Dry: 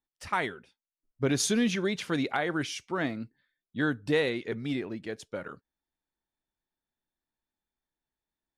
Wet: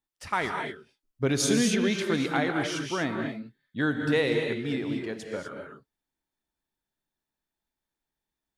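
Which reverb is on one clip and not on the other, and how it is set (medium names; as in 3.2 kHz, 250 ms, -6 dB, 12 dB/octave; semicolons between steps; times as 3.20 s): gated-style reverb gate 270 ms rising, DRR 3.5 dB; trim +1 dB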